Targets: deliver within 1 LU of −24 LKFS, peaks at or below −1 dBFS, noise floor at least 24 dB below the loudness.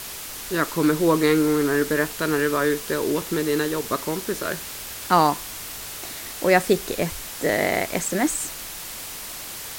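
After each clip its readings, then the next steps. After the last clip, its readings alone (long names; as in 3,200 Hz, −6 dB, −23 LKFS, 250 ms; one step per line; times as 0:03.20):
background noise floor −35 dBFS; target noise floor −48 dBFS; integrated loudness −23.5 LKFS; sample peak −4.0 dBFS; target loudness −24.0 LKFS
→ broadband denoise 13 dB, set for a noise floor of −35 dBFS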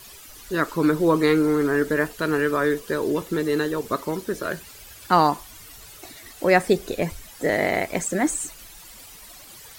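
background noise floor −45 dBFS; target noise floor −47 dBFS
→ broadband denoise 6 dB, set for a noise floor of −45 dBFS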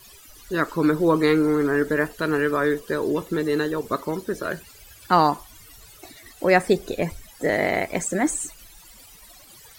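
background noise floor −49 dBFS; integrated loudness −23.0 LKFS; sample peak −4.5 dBFS; target loudness −24.0 LKFS
→ level −1 dB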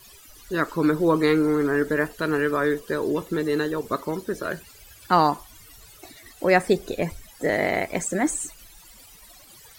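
integrated loudness −24.0 LKFS; sample peak −5.5 dBFS; background noise floor −50 dBFS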